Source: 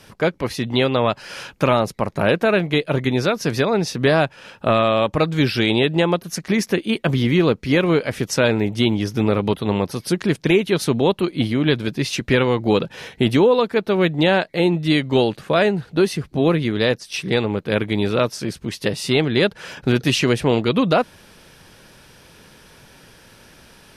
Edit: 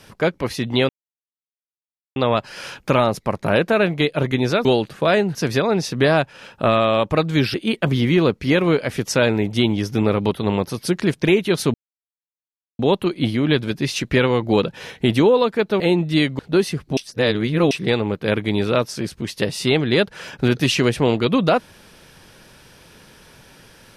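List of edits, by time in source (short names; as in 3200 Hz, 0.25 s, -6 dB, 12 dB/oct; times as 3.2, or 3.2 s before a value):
0.89 insert silence 1.27 s
5.57–6.76 cut
10.96 insert silence 1.05 s
13.97–14.54 cut
15.13–15.83 move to 3.38
16.41–17.15 reverse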